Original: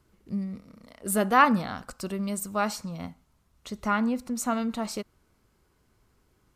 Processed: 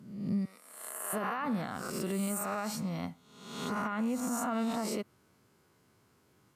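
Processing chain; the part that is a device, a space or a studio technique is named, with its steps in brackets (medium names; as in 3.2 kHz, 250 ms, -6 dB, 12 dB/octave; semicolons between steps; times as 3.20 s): reverse spectral sustain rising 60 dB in 0.84 s; 0.45–1.13 s: high-pass 870 Hz 12 dB/octave; dynamic bell 5 kHz, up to -6 dB, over -45 dBFS, Q 0.91; podcast mastering chain (high-pass 100 Hz 24 dB/octave; compression 3:1, threshold -26 dBFS, peak gain reduction 11 dB; peak limiter -24.5 dBFS, peak gain reduction 10.5 dB; MP3 112 kbps 44.1 kHz)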